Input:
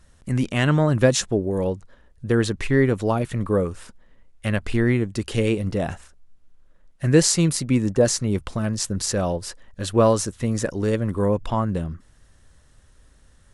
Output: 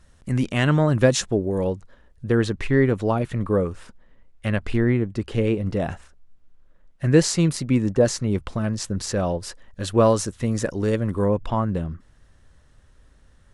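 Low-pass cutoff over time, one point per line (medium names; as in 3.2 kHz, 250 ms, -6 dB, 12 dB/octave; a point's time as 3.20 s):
low-pass 6 dB/octave
8.8 kHz
from 2.29 s 3.8 kHz
from 4.78 s 1.7 kHz
from 5.66 s 4 kHz
from 9.43 s 8.8 kHz
from 11.24 s 3.7 kHz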